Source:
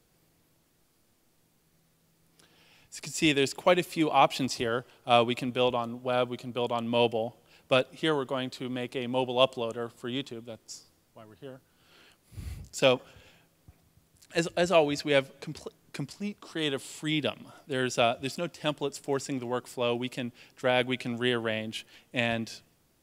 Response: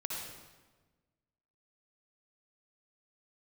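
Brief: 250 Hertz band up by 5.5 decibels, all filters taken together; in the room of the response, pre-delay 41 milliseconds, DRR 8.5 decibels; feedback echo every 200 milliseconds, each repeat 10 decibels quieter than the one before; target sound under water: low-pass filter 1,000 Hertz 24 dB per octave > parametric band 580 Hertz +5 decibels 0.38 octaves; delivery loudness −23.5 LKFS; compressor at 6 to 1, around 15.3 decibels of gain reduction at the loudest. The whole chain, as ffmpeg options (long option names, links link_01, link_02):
-filter_complex "[0:a]equalizer=frequency=250:width_type=o:gain=6.5,acompressor=threshold=-33dB:ratio=6,aecho=1:1:200|400|600|800:0.316|0.101|0.0324|0.0104,asplit=2[link_01][link_02];[1:a]atrim=start_sample=2205,adelay=41[link_03];[link_02][link_03]afir=irnorm=-1:irlink=0,volume=-10.5dB[link_04];[link_01][link_04]amix=inputs=2:normalize=0,lowpass=frequency=1000:width=0.5412,lowpass=frequency=1000:width=1.3066,equalizer=frequency=580:width_type=o:width=0.38:gain=5,volume=13.5dB"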